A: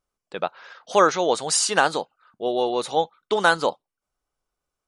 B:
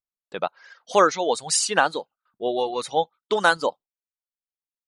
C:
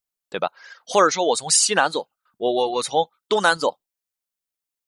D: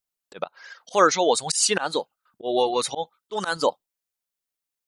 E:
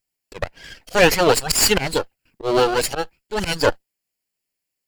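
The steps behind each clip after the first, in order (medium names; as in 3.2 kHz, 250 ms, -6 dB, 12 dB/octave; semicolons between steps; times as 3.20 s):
gate with hold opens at -48 dBFS; reverb removal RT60 1.7 s
treble shelf 5.3 kHz +6 dB; in parallel at +1 dB: peak limiter -14.5 dBFS, peak gain reduction 11.5 dB; on the sum: trim -2.5 dB
slow attack 139 ms
comb filter that takes the minimum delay 0.4 ms; trim +6.5 dB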